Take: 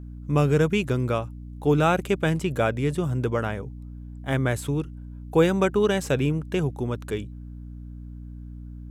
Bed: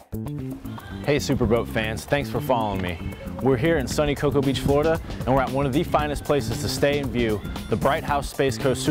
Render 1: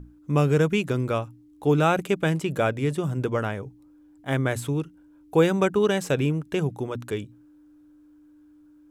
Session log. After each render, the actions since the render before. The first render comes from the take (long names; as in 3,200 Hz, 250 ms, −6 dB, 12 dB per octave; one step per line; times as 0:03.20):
mains-hum notches 60/120/180/240 Hz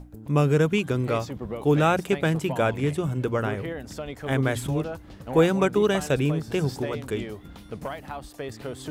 mix in bed −13 dB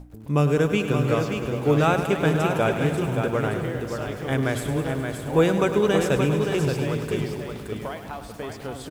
single-tap delay 574 ms −6 dB
feedback echo at a low word length 102 ms, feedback 80%, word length 8 bits, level −10.5 dB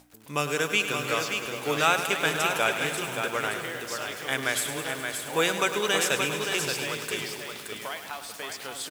high-pass filter 320 Hz 6 dB per octave
tilt shelving filter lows −9 dB, about 1,100 Hz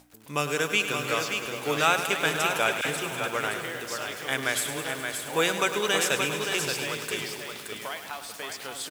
0:02.81–0:03.26: all-pass dispersion lows, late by 42 ms, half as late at 1,100 Hz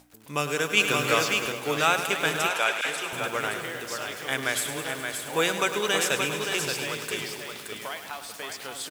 0:00.77–0:01.52: clip gain +4.5 dB
0:02.49–0:03.13: meter weighting curve A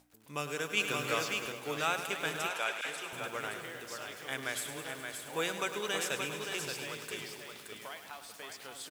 level −9.5 dB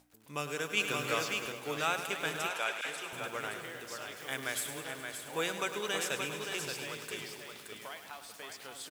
0:04.20–0:04.79: high-shelf EQ 9,500 Hz +5.5 dB